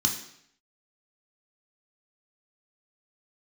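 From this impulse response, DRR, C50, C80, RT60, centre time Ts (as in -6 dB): 1.5 dB, 8.0 dB, 11.0 dB, 0.70 s, 21 ms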